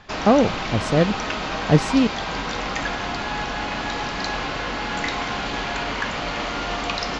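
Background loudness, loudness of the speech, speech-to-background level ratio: -26.0 LUFS, -20.5 LUFS, 5.5 dB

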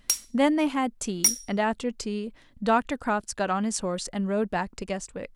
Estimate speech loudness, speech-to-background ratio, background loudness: -28.0 LUFS, -3.0 dB, -25.0 LUFS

